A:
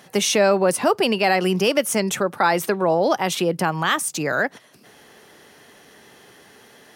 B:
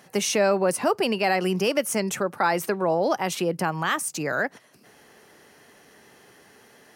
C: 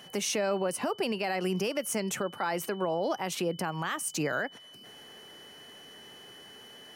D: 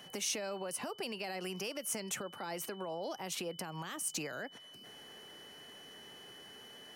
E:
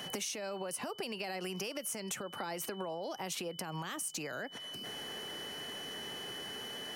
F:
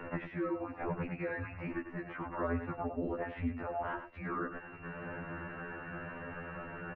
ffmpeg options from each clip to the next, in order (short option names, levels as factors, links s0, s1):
-af "equalizer=f=3500:w=4.6:g=-6,volume=0.631"
-af "alimiter=limit=0.0891:level=0:latency=1:release=291,aeval=exprs='val(0)+0.00316*sin(2*PI*3000*n/s)':c=same"
-filter_complex "[0:a]acrossover=split=600|3300[s0][s1][s2];[s0]acompressor=threshold=0.0112:ratio=6[s3];[s1]alimiter=level_in=3.35:limit=0.0631:level=0:latency=1:release=116,volume=0.299[s4];[s3][s4][s2]amix=inputs=3:normalize=0,volume=0.708"
-af "acompressor=threshold=0.00501:ratio=10,volume=3.16"
-af "aecho=1:1:99:0.316,highpass=f=320:t=q:w=0.5412,highpass=f=320:t=q:w=1.307,lowpass=f=2200:t=q:w=0.5176,lowpass=f=2200:t=q:w=0.7071,lowpass=f=2200:t=q:w=1.932,afreqshift=-260,afftfilt=real='re*2*eq(mod(b,4),0)':imag='im*2*eq(mod(b,4),0)':win_size=2048:overlap=0.75,volume=2.24"